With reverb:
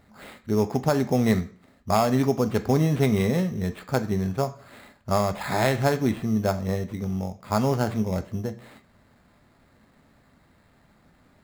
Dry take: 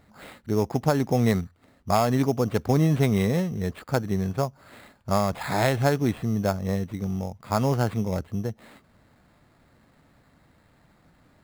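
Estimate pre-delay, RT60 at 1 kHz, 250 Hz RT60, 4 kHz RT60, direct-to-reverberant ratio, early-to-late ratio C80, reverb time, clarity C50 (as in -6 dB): 3 ms, 0.50 s, 0.50 s, 0.40 s, 8.5 dB, 19.5 dB, 0.50 s, 15.0 dB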